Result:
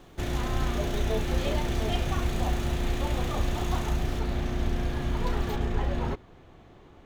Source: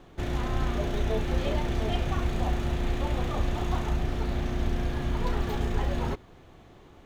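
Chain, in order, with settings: treble shelf 4.9 kHz +9 dB, from 4.19 s +2.5 dB, from 5.56 s -6.5 dB

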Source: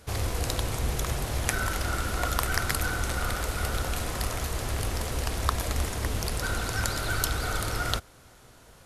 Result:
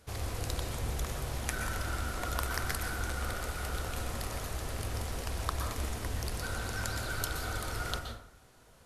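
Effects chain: plate-style reverb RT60 0.66 s, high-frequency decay 0.55×, pre-delay 110 ms, DRR 4.5 dB; trim -8 dB

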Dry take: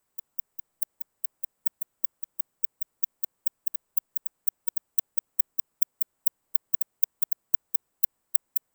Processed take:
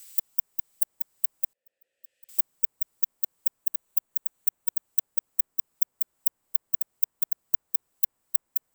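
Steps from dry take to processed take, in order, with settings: 1.53–2.29 s: vowel filter e; 3.61–4.86 s: band-stop 5.1 kHz, Q 8.3; three bands compressed up and down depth 100%

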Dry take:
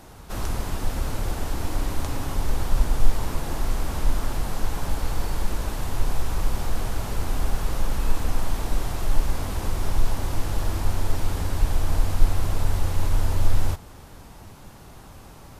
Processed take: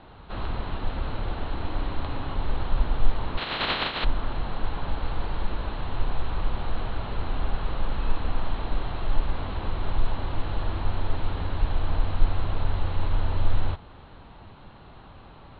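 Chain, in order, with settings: 3.37–4.03 s: spectral contrast reduction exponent 0.12; rippled Chebyshev low-pass 4.2 kHz, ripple 3 dB

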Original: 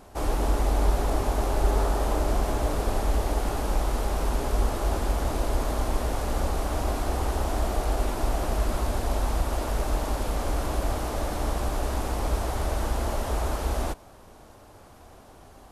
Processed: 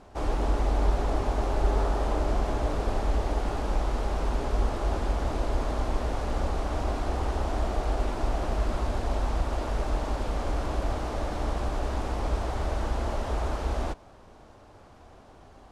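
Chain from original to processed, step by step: distance through air 78 m; trim -1.5 dB

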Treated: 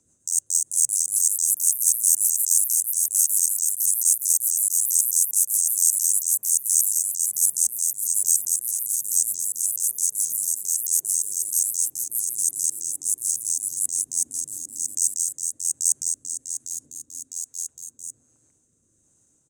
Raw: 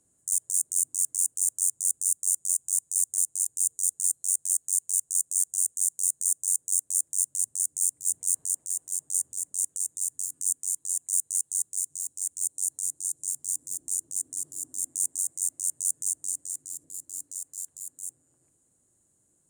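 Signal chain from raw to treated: rotary cabinet horn 7 Hz, later 1.2 Hz, at 1.52 s; ever faster or slower copies 464 ms, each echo +3 st, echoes 3; pitch shift -1.5 st; trim +6.5 dB

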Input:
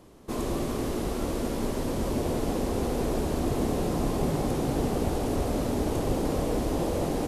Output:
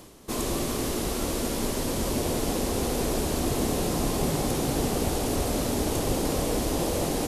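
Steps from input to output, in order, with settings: treble shelf 2.3 kHz +10.5 dB; reverse; upward compressor, threshold -36 dBFS; reverse

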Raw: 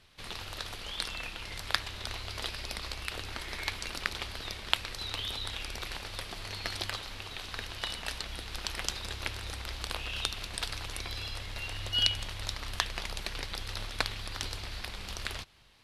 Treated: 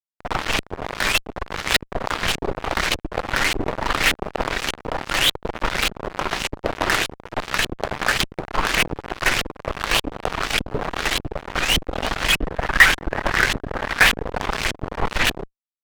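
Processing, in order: peaking EQ 69 Hz -12.5 dB 0.7 oct; de-hum 49.5 Hz, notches 5; on a send: echo whose repeats swap between lows and highs 180 ms, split 1.3 kHz, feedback 57%, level -9.5 dB; on the sum: simulated room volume 67 m³, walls mixed, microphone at 0.46 m; LFO low-pass saw up 1.7 Hz 240–3200 Hz; fuzz box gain 33 dB, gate -36 dBFS; 12.29–14.22 s: peaking EQ 1.7 kHz +8 dB 0.35 oct; vibrato with a chosen wave saw up 5.6 Hz, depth 250 cents; trim +3.5 dB

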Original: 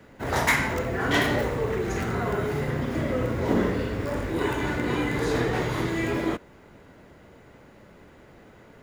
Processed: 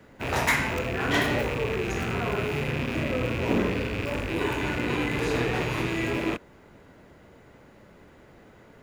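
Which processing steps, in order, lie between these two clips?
rattle on loud lows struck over -37 dBFS, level -21 dBFS; trim -1.5 dB

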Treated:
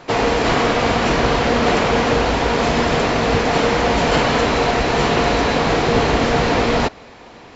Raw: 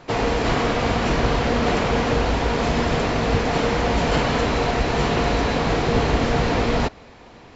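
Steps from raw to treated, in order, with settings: bass shelf 160 Hz -7.5 dB; trim +5.5 dB

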